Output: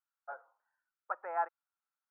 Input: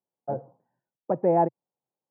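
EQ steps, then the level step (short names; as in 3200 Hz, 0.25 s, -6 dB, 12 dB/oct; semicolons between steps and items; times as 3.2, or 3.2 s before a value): ladder high-pass 1300 Hz, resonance 80%; high shelf 2000 Hz -10 dB; +12.5 dB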